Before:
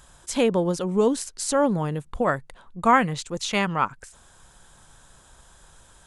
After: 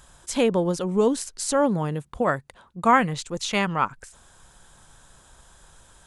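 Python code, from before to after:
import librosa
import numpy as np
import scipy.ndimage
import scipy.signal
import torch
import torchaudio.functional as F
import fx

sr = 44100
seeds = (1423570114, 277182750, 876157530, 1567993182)

y = fx.highpass(x, sr, hz=51.0, slope=12, at=(1.61, 3.0))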